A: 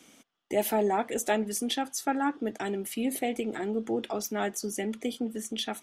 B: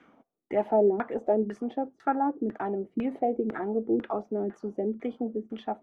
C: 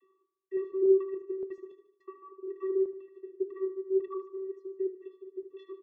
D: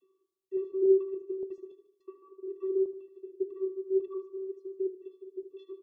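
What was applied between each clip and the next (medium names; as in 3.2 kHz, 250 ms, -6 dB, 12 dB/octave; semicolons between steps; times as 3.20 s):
LFO low-pass saw down 2 Hz 290–1700 Hz; trim -1 dB
vocoder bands 32, square 382 Hz; random-step tremolo, depth 70%; on a send: feedback delay 75 ms, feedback 52%, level -12 dB
Butterworth band-stop 1.6 kHz, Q 0.85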